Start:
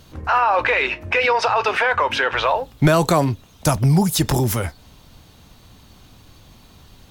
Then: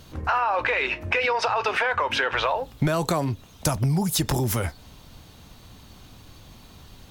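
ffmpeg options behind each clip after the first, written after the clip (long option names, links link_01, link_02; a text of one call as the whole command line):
ffmpeg -i in.wav -af "acompressor=threshold=-20dB:ratio=6" out.wav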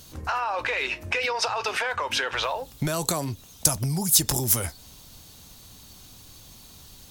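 ffmpeg -i in.wav -af "bass=frequency=250:gain=0,treble=frequency=4000:gain=14,volume=-4.5dB" out.wav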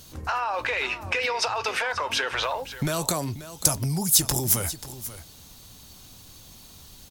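ffmpeg -i in.wav -af "aecho=1:1:536:0.2" out.wav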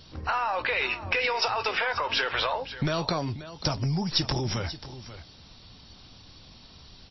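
ffmpeg -i in.wav -af "aeval=exprs='0.891*(cos(1*acos(clip(val(0)/0.891,-1,1)))-cos(1*PI/2))+0.0251*(cos(8*acos(clip(val(0)/0.891,-1,1)))-cos(8*PI/2))':channel_layout=same" -ar 16000 -c:a libmp3lame -b:a 24k out.mp3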